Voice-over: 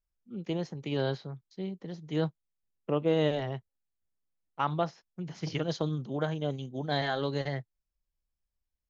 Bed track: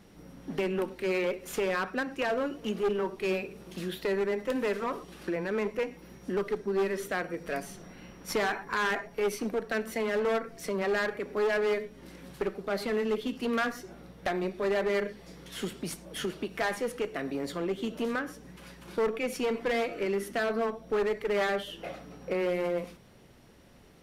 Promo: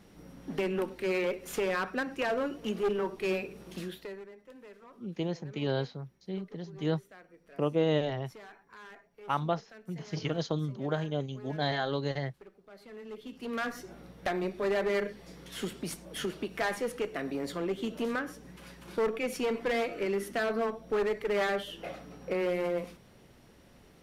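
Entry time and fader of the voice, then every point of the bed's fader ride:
4.70 s, −0.5 dB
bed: 0:03.78 −1 dB
0:04.34 −21.5 dB
0:12.74 −21.5 dB
0:13.80 −1 dB

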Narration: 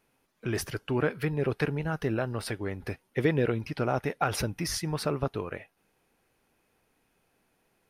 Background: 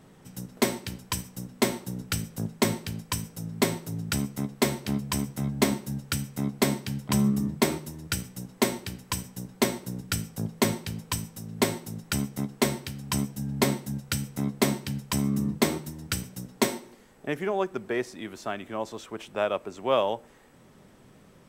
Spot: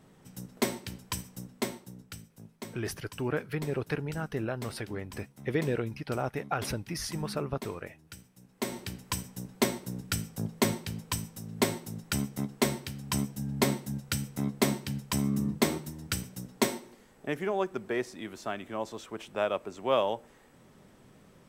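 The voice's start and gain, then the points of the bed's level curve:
2.30 s, −4.0 dB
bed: 0:01.38 −4.5 dB
0:02.35 −18.5 dB
0:08.41 −18.5 dB
0:08.81 −2.5 dB

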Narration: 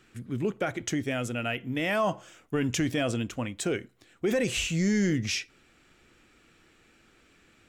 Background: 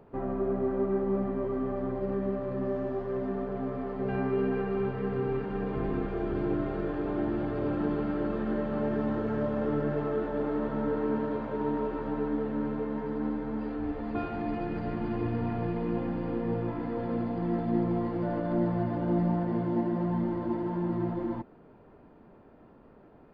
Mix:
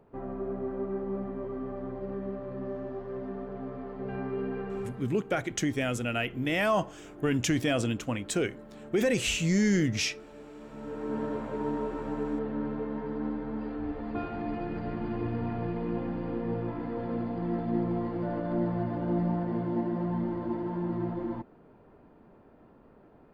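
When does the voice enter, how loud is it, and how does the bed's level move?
4.70 s, +0.5 dB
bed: 0:04.79 −5 dB
0:05.18 −17 dB
0:10.58 −17 dB
0:11.22 −1.5 dB

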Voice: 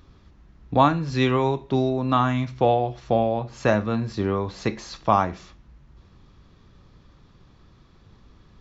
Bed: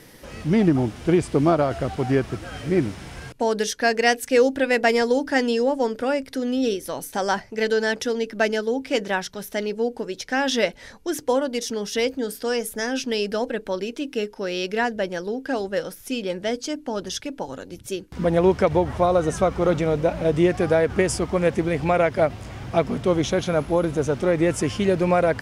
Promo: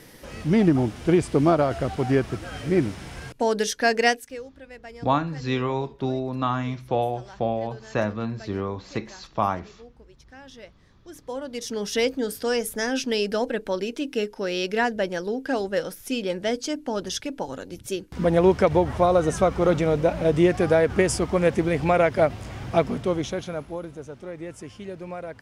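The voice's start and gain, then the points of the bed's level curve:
4.30 s, −4.5 dB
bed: 0:04.07 −0.5 dB
0:04.44 −23.5 dB
0:10.84 −23.5 dB
0:11.84 0 dB
0:22.78 0 dB
0:24.07 −16 dB

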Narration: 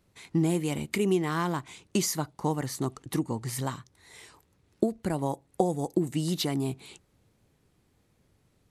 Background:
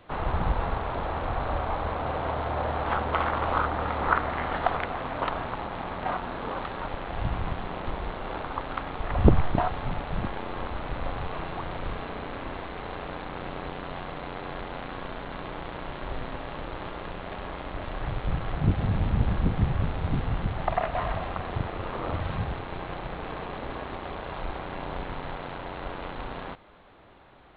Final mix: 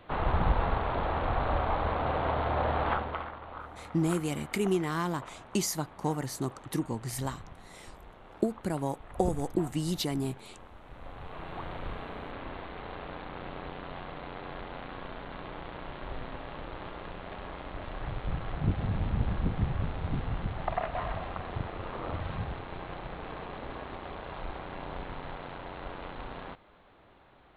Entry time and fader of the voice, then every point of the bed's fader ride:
3.60 s, −2.5 dB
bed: 0:02.86 0 dB
0:03.40 −17.5 dB
0:10.82 −17.5 dB
0:11.59 −5 dB

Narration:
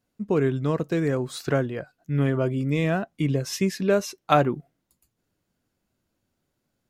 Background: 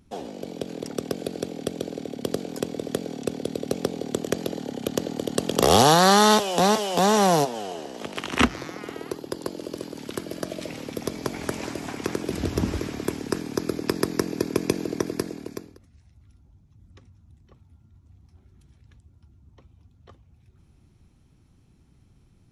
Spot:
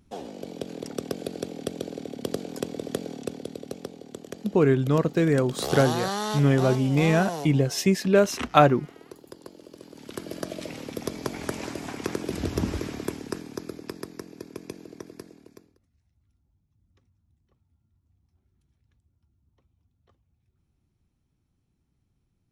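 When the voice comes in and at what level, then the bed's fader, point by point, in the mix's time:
4.25 s, +2.5 dB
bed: 0:03.07 −2.5 dB
0:04.03 −13 dB
0:09.75 −13 dB
0:10.29 −2 dB
0:12.93 −2 dB
0:14.22 −15 dB

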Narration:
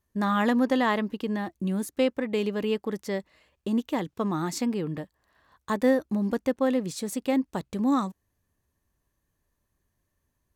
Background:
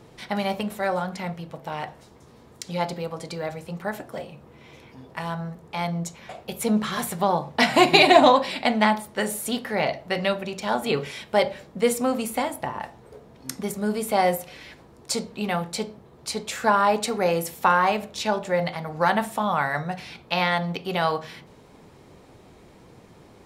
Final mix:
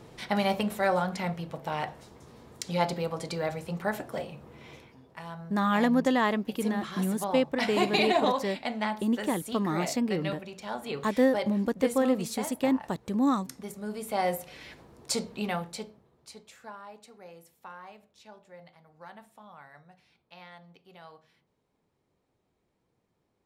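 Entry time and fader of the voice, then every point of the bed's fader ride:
5.35 s, −1.0 dB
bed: 0:04.73 −0.5 dB
0:05.01 −11 dB
0:13.86 −11 dB
0:14.66 −3 dB
0:15.37 −3 dB
0:16.83 −26.5 dB

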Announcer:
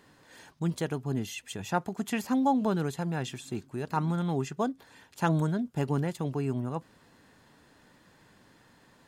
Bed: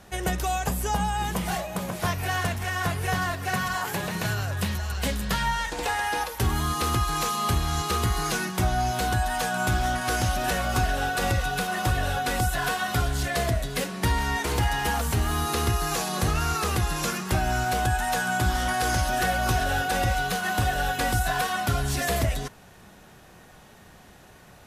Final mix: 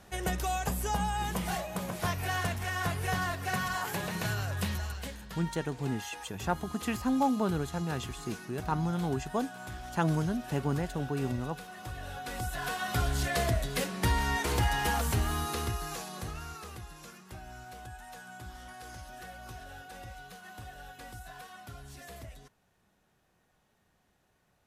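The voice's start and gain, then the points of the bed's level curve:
4.75 s, −2.0 dB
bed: 0:04.84 −5 dB
0:05.19 −18 dB
0:11.79 −18 dB
0:13.10 −3.5 dB
0:15.10 −3.5 dB
0:16.99 −21.5 dB

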